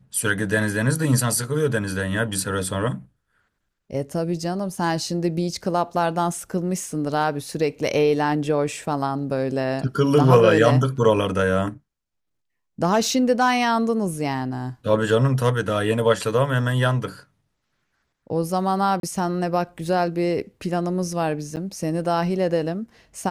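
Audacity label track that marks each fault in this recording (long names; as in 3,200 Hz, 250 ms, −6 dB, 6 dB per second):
19.000000	19.030000	drop-out 32 ms
21.560000	21.570000	drop-out 8.6 ms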